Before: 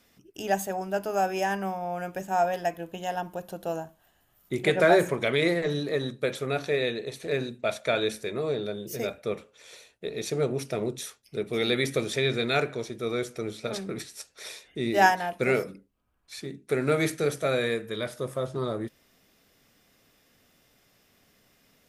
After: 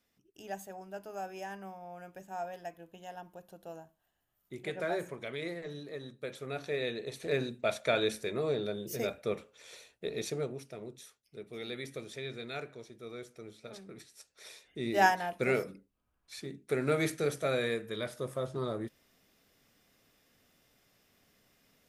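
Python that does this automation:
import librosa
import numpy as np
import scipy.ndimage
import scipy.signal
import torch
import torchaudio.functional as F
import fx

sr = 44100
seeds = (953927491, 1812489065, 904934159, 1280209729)

y = fx.gain(x, sr, db=fx.line((6.03, -14.5), (7.29, -3.0), (10.19, -3.0), (10.66, -15.0), (13.96, -15.0), (15.01, -5.0)))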